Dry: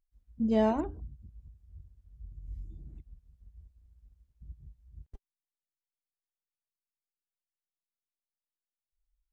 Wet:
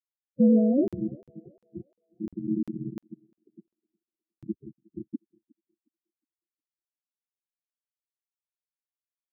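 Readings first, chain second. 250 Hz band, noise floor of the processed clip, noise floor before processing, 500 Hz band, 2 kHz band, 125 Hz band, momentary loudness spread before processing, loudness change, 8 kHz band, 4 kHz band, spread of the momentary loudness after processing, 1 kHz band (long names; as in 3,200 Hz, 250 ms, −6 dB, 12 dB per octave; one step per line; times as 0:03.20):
+9.0 dB, below −85 dBFS, below −85 dBFS, +4.0 dB, below −15 dB, +6.5 dB, 22 LU, +4.5 dB, can't be measured, below −15 dB, 24 LU, below −10 dB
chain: spectral dynamics exaggerated over time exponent 1.5
leveller curve on the samples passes 5
treble cut that deepens with the level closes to 330 Hz, closed at −24.5 dBFS
amplitude modulation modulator 270 Hz, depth 75%
high-pass filter 120 Hz 24 dB per octave
dead-zone distortion −56.5 dBFS
spectral peaks only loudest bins 8
feedback echo with a high-pass in the loop 362 ms, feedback 76%, high-pass 950 Hz, level −17 dB
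regular buffer underruns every 0.35 s, samples 2,048, zero, from 0:00.88
level +7.5 dB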